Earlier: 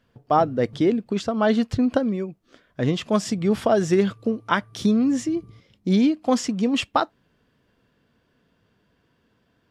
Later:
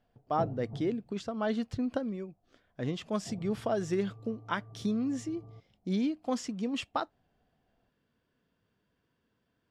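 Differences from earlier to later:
speech −11.5 dB
background: add low-pass with resonance 750 Hz, resonance Q 5.8

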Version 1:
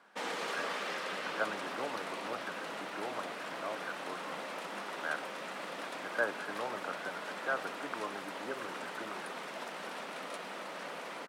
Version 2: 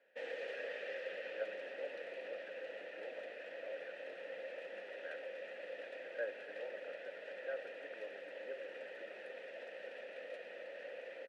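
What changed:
background +3.5 dB
master: add formant filter e

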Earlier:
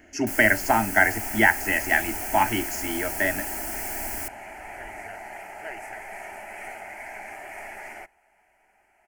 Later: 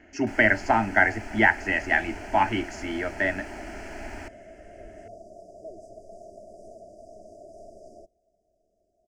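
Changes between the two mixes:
first sound: add high-shelf EQ 6,700 Hz −9.5 dB
second sound: add linear-phase brick-wall band-stop 710–4,700 Hz
master: add high-frequency loss of the air 130 metres

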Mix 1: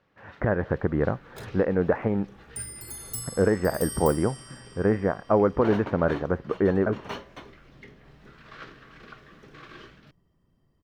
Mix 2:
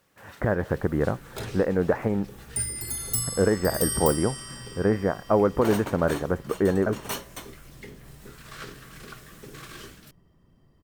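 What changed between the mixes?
first sound: remove high-frequency loss of the air 250 metres
second sound +7.5 dB

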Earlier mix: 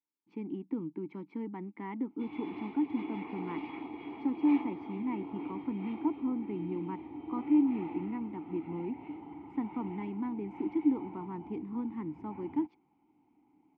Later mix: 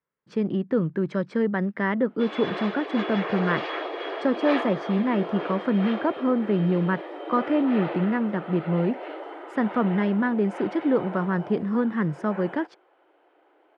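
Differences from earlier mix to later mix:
background: add linear-phase brick-wall high-pass 290 Hz
master: remove formant filter u

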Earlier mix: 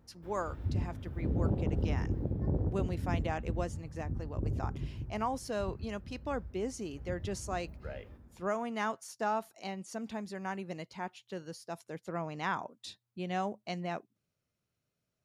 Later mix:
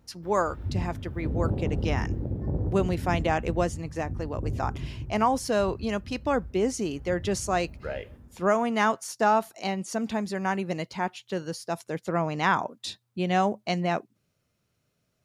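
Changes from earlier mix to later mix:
speech +10.5 dB
background: send +6.5 dB

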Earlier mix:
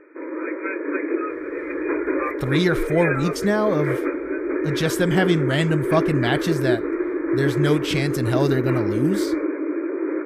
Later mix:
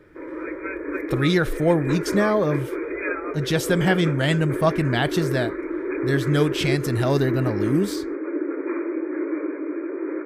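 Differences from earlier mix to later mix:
speech: entry −1.30 s
background −3.5 dB

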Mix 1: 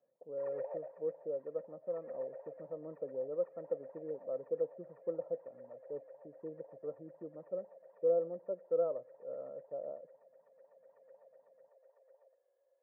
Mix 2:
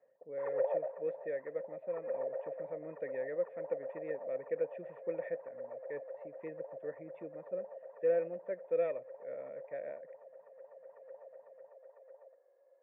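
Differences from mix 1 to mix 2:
speech: remove linear-phase brick-wall low-pass 1,400 Hz
background +9.0 dB

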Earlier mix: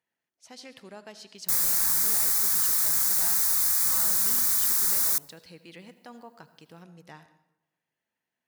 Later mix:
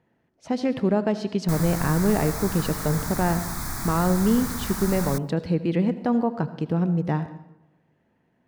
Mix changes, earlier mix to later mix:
background −9.5 dB
master: remove first-order pre-emphasis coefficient 0.97

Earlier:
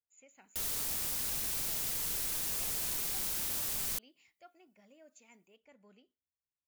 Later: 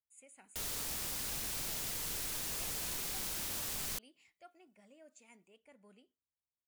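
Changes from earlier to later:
speech: remove linear-phase brick-wall low-pass 7,300 Hz
master: add high-shelf EQ 8,600 Hz −6.5 dB

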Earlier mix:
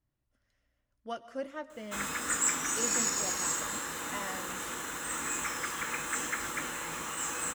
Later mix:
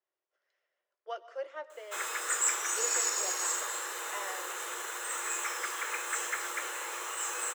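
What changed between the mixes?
speech: add high-frequency loss of the air 100 metres
master: add Butterworth high-pass 350 Hz 96 dB per octave

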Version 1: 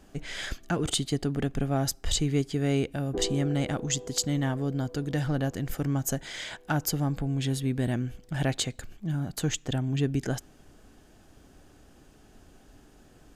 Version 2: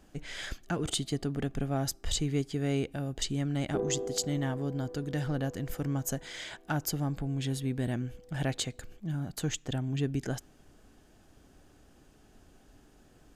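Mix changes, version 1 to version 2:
speech −4.0 dB
background: entry +0.60 s

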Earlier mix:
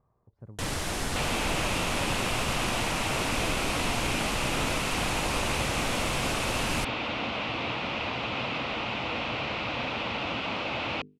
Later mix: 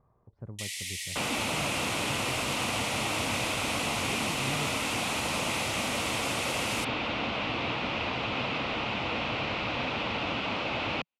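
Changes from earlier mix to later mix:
speech +4.0 dB
first sound: add Chebyshev high-pass filter 1,900 Hz, order 8
second sound: remove mains-hum notches 50/100/150/200/250/300/350/400/450 Hz

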